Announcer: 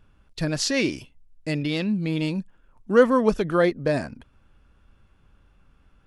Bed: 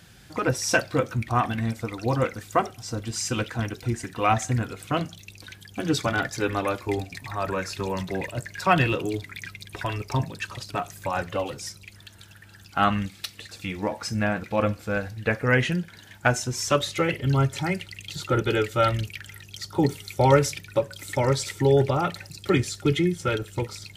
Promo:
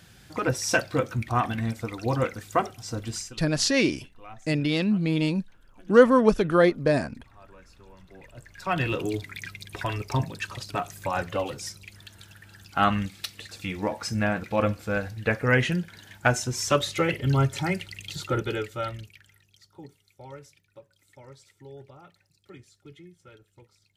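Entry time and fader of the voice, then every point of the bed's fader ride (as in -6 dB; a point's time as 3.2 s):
3.00 s, +1.0 dB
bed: 3.16 s -1.5 dB
3.4 s -24 dB
7.98 s -24 dB
9.02 s -0.5 dB
18.13 s -0.5 dB
20.01 s -26 dB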